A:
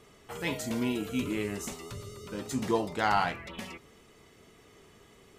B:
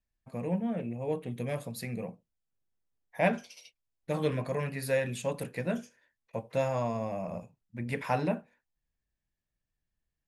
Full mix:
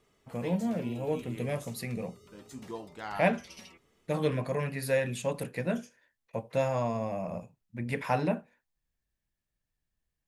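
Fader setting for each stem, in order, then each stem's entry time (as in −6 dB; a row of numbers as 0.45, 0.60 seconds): −12.5, +1.0 decibels; 0.00, 0.00 seconds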